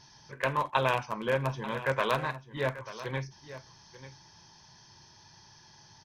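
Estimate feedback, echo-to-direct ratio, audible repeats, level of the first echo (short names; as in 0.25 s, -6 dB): no steady repeat, -14.5 dB, 1, -14.5 dB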